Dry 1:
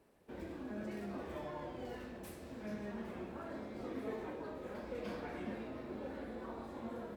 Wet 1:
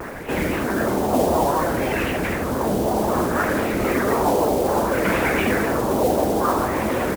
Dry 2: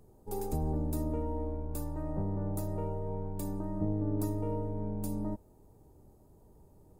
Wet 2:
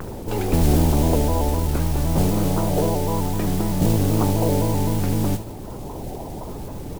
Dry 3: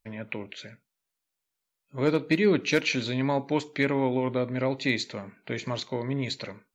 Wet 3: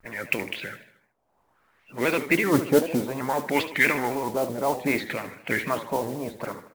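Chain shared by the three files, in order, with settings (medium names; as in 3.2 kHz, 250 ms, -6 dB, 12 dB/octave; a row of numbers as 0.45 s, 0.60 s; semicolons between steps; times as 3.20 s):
harmonic-percussive split harmonic -16 dB; in parallel at -1 dB: upward compressor, threshold -36 dBFS; on the sum: transient shaper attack -3 dB, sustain +5 dB; LFO low-pass sine 0.61 Hz 750–2600 Hz; modulation noise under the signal 16 dB; on a send: feedback delay 76 ms, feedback 51%, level -13 dB; on the sum: vibrato with a chosen wave square 3.9 Hz, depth 100 cents; peak normalisation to -6 dBFS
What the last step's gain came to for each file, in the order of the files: +19.5 dB, +16.5 dB, +1.0 dB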